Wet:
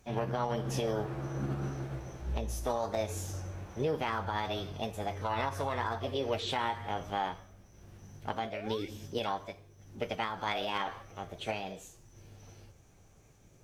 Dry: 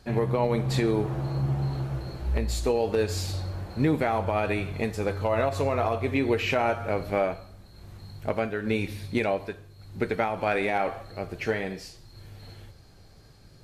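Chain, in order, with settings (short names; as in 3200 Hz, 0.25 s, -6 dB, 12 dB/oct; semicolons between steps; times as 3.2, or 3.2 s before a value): painted sound rise, 8.34–8.89, 250–1700 Hz -42 dBFS; formant shift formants +6 st; gain -8 dB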